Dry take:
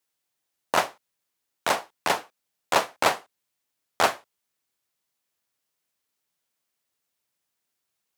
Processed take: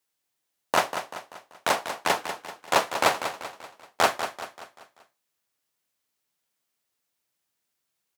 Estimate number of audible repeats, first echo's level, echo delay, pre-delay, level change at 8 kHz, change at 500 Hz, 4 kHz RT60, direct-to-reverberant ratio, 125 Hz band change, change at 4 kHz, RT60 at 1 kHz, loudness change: 4, −9.5 dB, 193 ms, no reverb audible, +0.5 dB, +0.5 dB, no reverb audible, no reverb audible, +0.5 dB, +0.5 dB, no reverb audible, 0.0 dB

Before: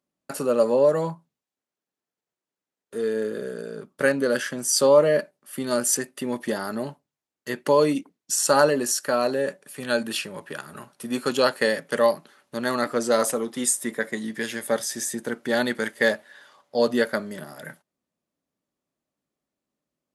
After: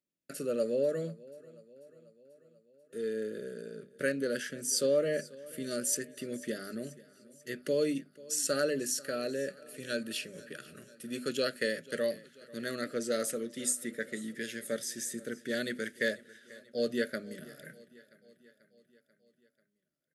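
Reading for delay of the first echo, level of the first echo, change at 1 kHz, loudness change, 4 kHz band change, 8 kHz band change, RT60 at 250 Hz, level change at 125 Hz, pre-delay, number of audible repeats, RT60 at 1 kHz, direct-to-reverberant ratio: 489 ms, −21.0 dB, −20.0 dB, −10.5 dB, −8.5 dB, −8.5 dB, no reverb audible, −9.5 dB, no reverb audible, 4, no reverb audible, no reverb audible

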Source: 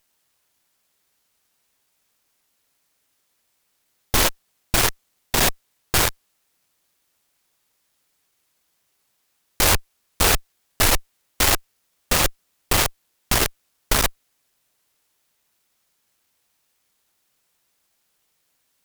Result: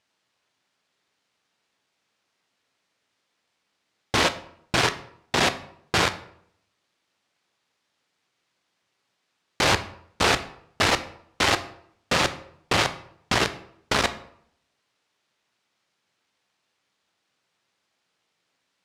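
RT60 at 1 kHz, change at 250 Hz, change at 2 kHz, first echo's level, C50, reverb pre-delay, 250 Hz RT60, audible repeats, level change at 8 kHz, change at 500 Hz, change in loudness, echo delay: 0.65 s, 0.0 dB, 0.0 dB, no echo audible, 14.5 dB, 11 ms, 0.70 s, no echo audible, −9.5 dB, +0.5 dB, −3.5 dB, no echo audible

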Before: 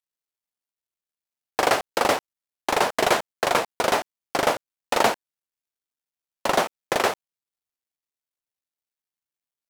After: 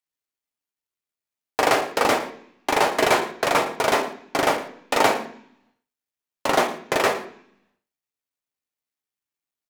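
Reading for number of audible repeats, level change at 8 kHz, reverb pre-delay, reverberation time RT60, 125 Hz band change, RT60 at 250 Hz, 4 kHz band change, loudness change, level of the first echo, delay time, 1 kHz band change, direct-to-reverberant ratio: 1, +0.5 dB, 3 ms, 0.65 s, +2.0 dB, 0.90 s, +1.0 dB, +1.5 dB, −15.5 dB, 110 ms, +1.5 dB, 2.0 dB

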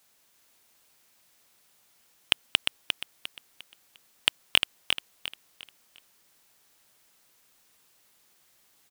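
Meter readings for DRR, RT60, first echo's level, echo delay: no reverb audible, no reverb audible, −5.5 dB, 352 ms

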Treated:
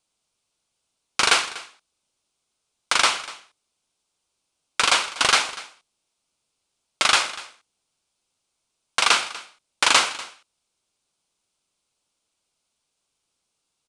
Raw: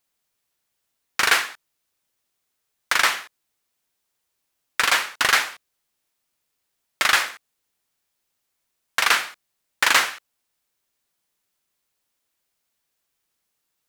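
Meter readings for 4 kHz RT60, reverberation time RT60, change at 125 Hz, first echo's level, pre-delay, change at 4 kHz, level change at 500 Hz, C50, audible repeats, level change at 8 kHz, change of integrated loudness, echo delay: no reverb audible, no reverb audible, can't be measured, −18.5 dB, no reverb audible, +3.0 dB, +2.5 dB, no reverb audible, 1, +2.5 dB, 0.0 dB, 243 ms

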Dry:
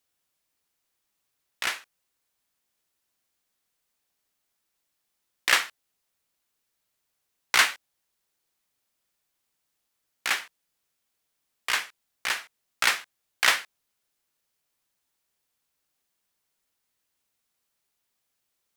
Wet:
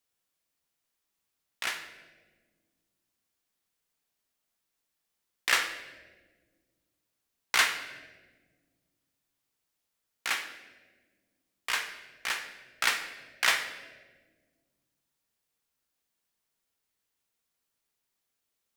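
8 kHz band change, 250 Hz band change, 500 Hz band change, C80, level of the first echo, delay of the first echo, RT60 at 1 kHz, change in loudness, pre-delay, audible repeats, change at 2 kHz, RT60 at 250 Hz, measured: −4.0 dB, −2.5 dB, −3.0 dB, 11.0 dB, no echo audible, no echo audible, 1.2 s, −4.0 dB, 4 ms, no echo audible, −3.5 dB, 2.6 s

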